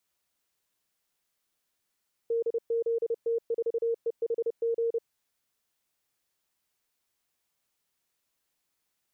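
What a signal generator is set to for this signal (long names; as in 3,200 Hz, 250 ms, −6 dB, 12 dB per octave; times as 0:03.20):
Morse code "DZT4EHG" 30 words per minute 462 Hz −24.5 dBFS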